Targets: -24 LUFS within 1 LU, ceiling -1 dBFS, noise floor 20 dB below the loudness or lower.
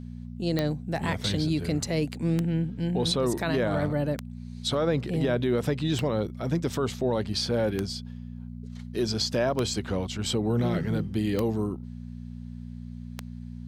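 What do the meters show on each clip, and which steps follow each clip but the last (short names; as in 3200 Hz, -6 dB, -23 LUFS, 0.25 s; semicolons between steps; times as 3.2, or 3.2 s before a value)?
clicks 8; hum 60 Hz; harmonics up to 240 Hz; hum level -36 dBFS; loudness -28.0 LUFS; peak -11.0 dBFS; loudness target -24.0 LUFS
-> de-click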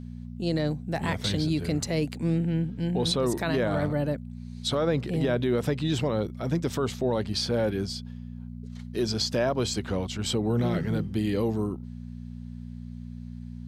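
clicks 0; hum 60 Hz; harmonics up to 240 Hz; hum level -36 dBFS
-> de-hum 60 Hz, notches 4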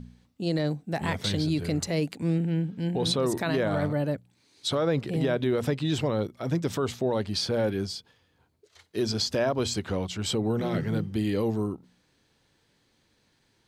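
hum none; loudness -28.0 LUFS; peak -15.5 dBFS; loudness target -24.0 LUFS
-> gain +4 dB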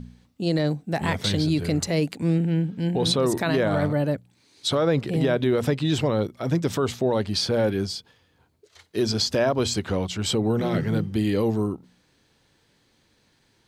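loudness -24.0 LUFS; peak -11.5 dBFS; noise floor -65 dBFS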